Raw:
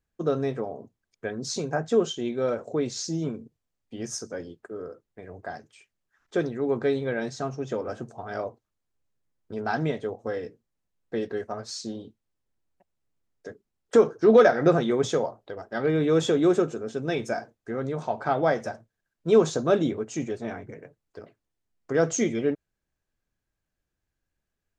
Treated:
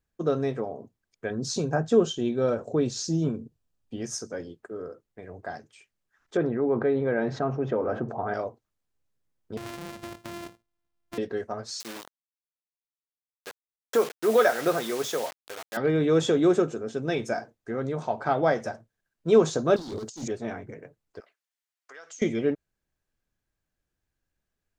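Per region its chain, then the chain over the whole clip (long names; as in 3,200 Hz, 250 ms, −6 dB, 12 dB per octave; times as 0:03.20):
0:01.30–0:03.99: low-shelf EQ 220 Hz +7 dB + notch filter 2,100 Hz, Q 6.2
0:06.37–0:08.34: low-pass filter 1,600 Hz + low-shelf EQ 130 Hz −6 dB + envelope flattener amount 50%
0:09.57–0:11.18: samples sorted by size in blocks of 128 samples + downward compressor 10 to 1, threshold −34 dBFS + highs frequency-modulated by the lows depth 0.39 ms
0:11.80–0:15.77: bit-depth reduction 6 bits, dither none + high-pass filter 670 Hz 6 dB per octave
0:19.76–0:20.28: hard clipping −30 dBFS + high shelf with overshoot 3,300 Hz +10.5 dB, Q 3 + compressor whose output falls as the input rises −35 dBFS, ratio −0.5
0:21.20–0:22.22: high-pass filter 1,300 Hz + downward compressor 4 to 1, threshold −44 dBFS
whole clip: no processing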